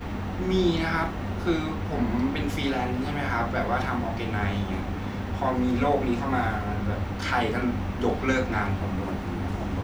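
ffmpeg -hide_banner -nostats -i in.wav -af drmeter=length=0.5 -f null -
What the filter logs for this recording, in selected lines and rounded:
Channel 1: DR: 9.7
Overall DR: 9.7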